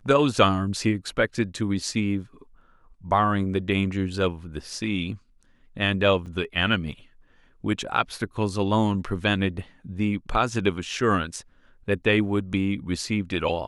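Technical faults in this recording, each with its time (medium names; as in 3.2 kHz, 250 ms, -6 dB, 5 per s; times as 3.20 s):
6.26 s: dropout 4.4 ms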